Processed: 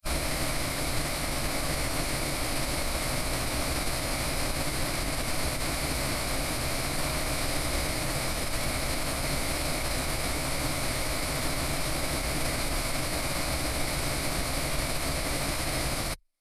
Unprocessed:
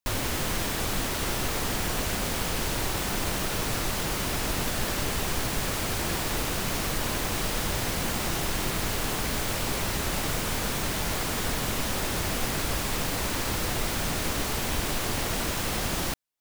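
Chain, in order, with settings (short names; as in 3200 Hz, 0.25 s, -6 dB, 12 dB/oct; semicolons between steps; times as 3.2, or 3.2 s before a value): ripple EQ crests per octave 0.92, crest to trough 8 dB; formant-preserving pitch shift -8.5 st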